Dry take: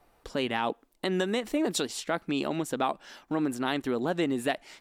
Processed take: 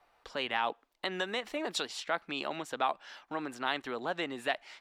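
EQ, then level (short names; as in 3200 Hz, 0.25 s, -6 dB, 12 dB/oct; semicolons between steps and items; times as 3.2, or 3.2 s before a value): three-band isolator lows -14 dB, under 600 Hz, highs -13 dB, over 5400 Hz; 0.0 dB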